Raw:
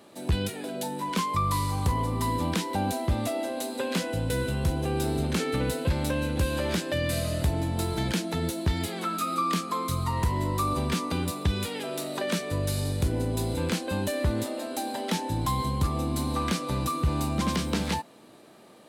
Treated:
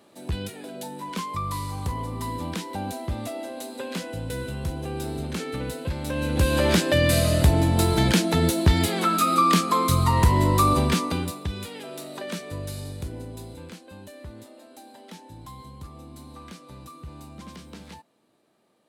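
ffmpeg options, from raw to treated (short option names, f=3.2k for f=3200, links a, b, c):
-af "volume=8dB,afade=t=in:st=6.04:d=0.62:silence=0.266073,afade=t=out:st=10.68:d=0.73:silence=0.237137,afade=t=out:st=12.5:d=1.29:silence=0.298538"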